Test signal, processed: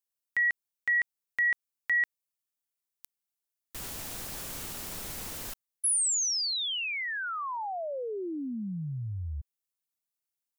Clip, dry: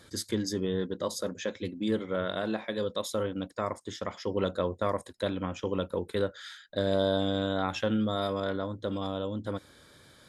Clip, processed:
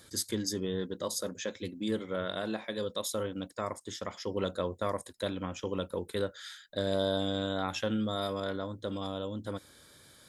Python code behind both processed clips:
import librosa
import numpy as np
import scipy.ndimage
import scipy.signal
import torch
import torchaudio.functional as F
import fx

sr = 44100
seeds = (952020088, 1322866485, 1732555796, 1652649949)

y = fx.high_shelf(x, sr, hz=5700.0, db=11.0)
y = y * librosa.db_to_amplitude(-3.5)